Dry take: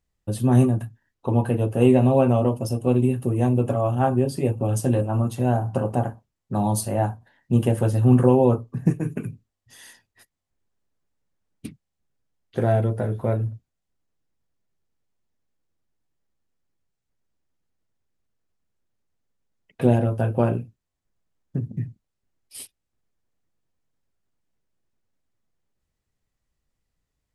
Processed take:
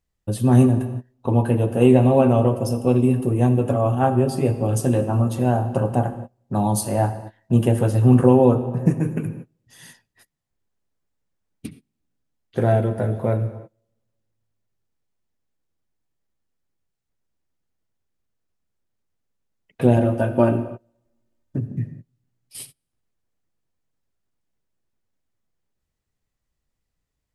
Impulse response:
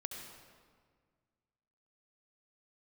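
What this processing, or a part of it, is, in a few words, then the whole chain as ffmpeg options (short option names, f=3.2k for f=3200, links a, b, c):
keyed gated reverb: -filter_complex "[0:a]asettb=1/sr,asplit=3[a][b][c];[a]atrim=end=19.974[d];[b]atrim=start=19.97:end=21.57,asetpts=PTS-STARTPTS,afade=t=in:d=0.004:c=qsin,afade=t=out:st=1.596:d=0.004:c=qsin,aecho=1:1:3.3:0.64,atrim=end_sample=70560[e];[c]atrim=start=21.566[f];[d][e]acrossfade=d=0.004:c1=hsin:c2=qsin[g];[g][f]acrossfade=d=0.004:c1=qsin:c2=hsin,asplit=3[h][i][j];[1:a]atrim=start_sample=2205[k];[i][k]afir=irnorm=-1:irlink=0[l];[j]apad=whole_len=1205950[m];[l][m]sidechaingate=range=-29dB:threshold=-45dB:ratio=16:detection=peak,volume=-3.5dB[n];[h][n]amix=inputs=2:normalize=0,volume=-1dB"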